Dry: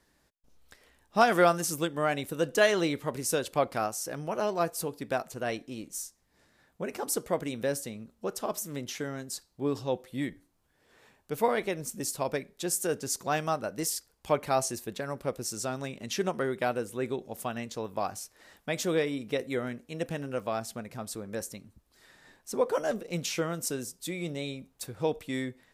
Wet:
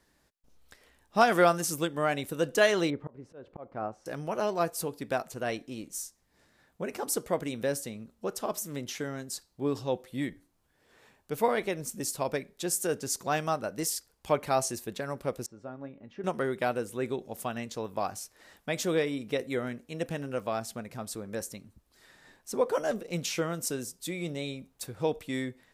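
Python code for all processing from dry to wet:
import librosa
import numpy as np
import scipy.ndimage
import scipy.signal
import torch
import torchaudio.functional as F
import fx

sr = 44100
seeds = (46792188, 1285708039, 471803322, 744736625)

y = fx.chain(x, sr, fx.bessel_lowpass(hz=950.0, order=2),
    fx.auto_swell(attack_ms=337.0), at=(2.9, 4.06))
y = fx.chain(y, sr, fx.lowpass(hz=1300.0, slope=12),
    fx.comb_fb(f0_hz=280.0, decay_s=0.16, harmonics='all', damping=0.0, mix_pct=70), at=(15.46, 16.24))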